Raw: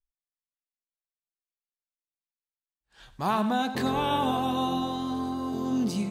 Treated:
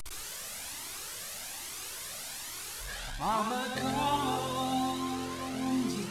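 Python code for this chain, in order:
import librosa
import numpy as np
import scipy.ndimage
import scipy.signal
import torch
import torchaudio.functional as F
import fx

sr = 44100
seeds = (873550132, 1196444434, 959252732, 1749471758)

y = fx.delta_mod(x, sr, bps=64000, step_db=-30.0)
y = fx.low_shelf(y, sr, hz=180.0, db=-3.0)
y = y + 10.0 ** (-6.0 / 20.0) * np.pad(y, (int(123 * sr / 1000.0), 0))[:len(y)]
y = fx.comb_cascade(y, sr, direction='rising', hz=1.2)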